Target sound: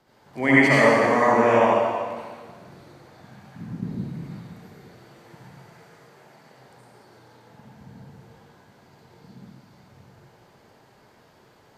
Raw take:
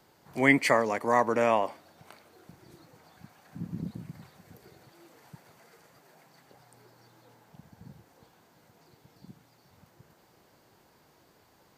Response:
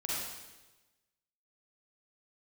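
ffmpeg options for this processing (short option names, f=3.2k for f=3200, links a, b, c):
-filter_complex "[0:a]highshelf=f=6.9k:g=-11[a];[1:a]atrim=start_sample=2205,asetrate=29106,aresample=44100[b];[a][b]afir=irnorm=-1:irlink=0"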